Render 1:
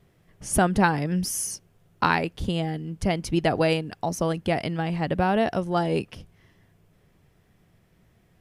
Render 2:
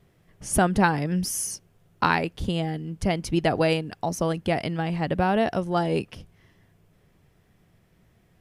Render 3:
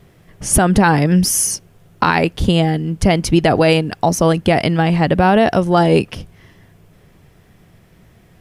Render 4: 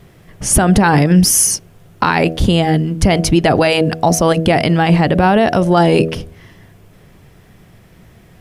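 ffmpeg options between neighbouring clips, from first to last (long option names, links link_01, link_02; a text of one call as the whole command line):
ffmpeg -i in.wav -af anull out.wav
ffmpeg -i in.wav -af "alimiter=level_in=13.5dB:limit=-1dB:release=50:level=0:latency=1,volume=-1dB" out.wav
ffmpeg -i in.wav -af "bandreject=frequency=80.63:width_type=h:width=4,bandreject=frequency=161.26:width_type=h:width=4,bandreject=frequency=241.89:width_type=h:width=4,bandreject=frequency=322.52:width_type=h:width=4,bandreject=frequency=403.15:width_type=h:width=4,bandreject=frequency=483.78:width_type=h:width=4,bandreject=frequency=564.41:width_type=h:width=4,bandreject=frequency=645.04:width_type=h:width=4,bandreject=frequency=725.67:width_type=h:width=4,alimiter=limit=-6.5dB:level=0:latency=1:release=31,volume=4.5dB" out.wav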